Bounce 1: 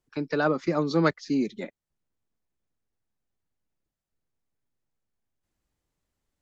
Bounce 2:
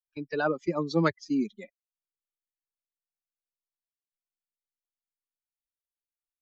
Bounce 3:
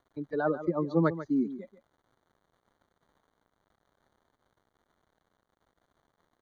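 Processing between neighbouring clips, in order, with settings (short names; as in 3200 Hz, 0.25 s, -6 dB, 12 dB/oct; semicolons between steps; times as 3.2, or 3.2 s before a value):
per-bin expansion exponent 2; gate -52 dBFS, range -7 dB
crackle 220/s -46 dBFS; running mean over 17 samples; echo 0.142 s -13 dB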